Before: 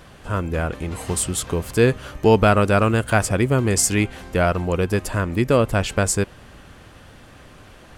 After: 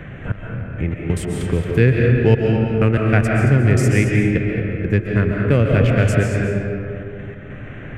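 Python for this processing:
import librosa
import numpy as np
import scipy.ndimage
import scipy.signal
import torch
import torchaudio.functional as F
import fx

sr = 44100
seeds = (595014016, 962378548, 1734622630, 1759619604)

y = fx.wiener(x, sr, points=9)
y = fx.graphic_eq(y, sr, hz=(125, 1000, 2000, 4000, 8000), db=(8, -12, 10, -6, -6))
y = fx.step_gate(y, sr, bpm=96, pattern='xx...x.x.xxxx', floor_db=-24.0, edge_ms=4.5)
y = fx.high_shelf(y, sr, hz=8500.0, db=-11.0)
y = y + 10.0 ** (-12.0 / 20.0) * np.pad(y, (int(225 * sr / 1000.0), 0))[:len(y)]
y = fx.rev_freeverb(y, sr, rt60_s=2.2, hf_ratio=0.5, predelay_ms=95, drr_db=0.0)
y = fx.band_squash(y, sr, depth_pct=40)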